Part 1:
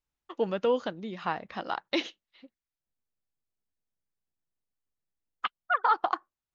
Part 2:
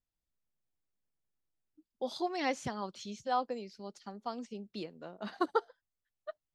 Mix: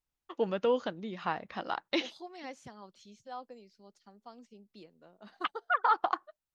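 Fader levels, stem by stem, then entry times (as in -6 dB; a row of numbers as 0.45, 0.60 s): -2.0, -11.5 dB; 0.00, 0.00 s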